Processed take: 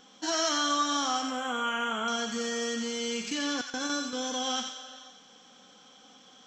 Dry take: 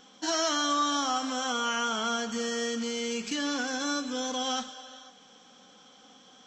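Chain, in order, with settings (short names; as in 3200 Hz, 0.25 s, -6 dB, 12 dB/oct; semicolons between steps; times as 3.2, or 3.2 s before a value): 1.22–2.08 Butterworth band-stop 5000 Hz, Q 1.1; 3.61–4.13 gate with hold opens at -22 dBFS; thin delay 89 ms, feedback 42%, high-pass 1500 Hz, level -4 dB; gain -1 dB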